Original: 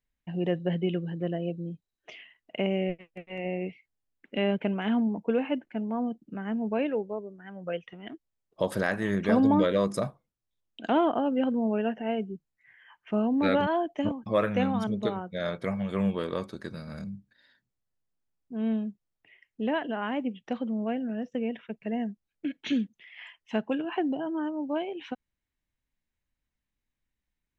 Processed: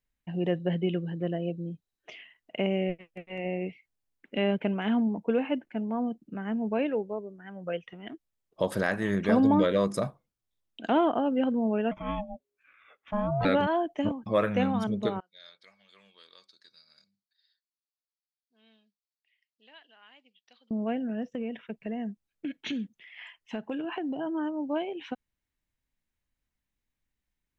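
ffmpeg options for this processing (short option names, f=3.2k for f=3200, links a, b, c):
-filter_complex "[0:a]asettb=1/sr,asplit=3[a][b][c];[a]atrim=end=11.914[d];[b]atrim=start=11.91:end=13.45,asetpts=PTS-STARTPTS,afade=t=in:d=0.004:c=qsin,afade=t=out:st=1.536:d=0.004:c=qsin,aeval=exprs='val(0)*sin(2*PI*410*n/s)':c=same[e];[c]atrim=start=13.446[f];[d][e]acrossfade=d=0.004:c1=hsin:c2=qsin[g];[g][f]acrossfade=d=0.004:c1=qsin:c2=hsin,asettb=1/sr,asplit=3[h][i][j];[h]atrim=end=15.204[k];[i]atrim=start=15.2:end=20.71,asetpts=PTS-STARTPTS,afade=t=in:d=0.004:c=qsin,afade=t=out:st=5.506:d=0.004:c=qsin,bandpass=f=4.5k:t=q:w=4.1[l];[j]atrim=start=20.706[m];[k][l]acrossfade=d=0.004:c1=hsin:c2=qsin[n];[n][m]acrossfade=d=0.004:c1=qsin:c2=hsin,asettb=1/sr,asplit=3[o][p][q];[o]atrim=end=21.234[r];[p]atrim=start=21.23:end=24.21,asetpts=PTS-STARTPTS,afade=t=in:d=0.004:c=qsin,afade=t=out:st=2.976:d=0.004:c=qsin,acompressor=threshold=-29dB:ratio=6:attack=3.2:release=140:knee=1:detection=peak[s];[q]atrim=start=24.206[t];[r][s]acrossfade=d=0.004:c1=hsin:c2=qsin[u];[u][t]acrossfade=d=0.004:c1=qsin:c2=hsin"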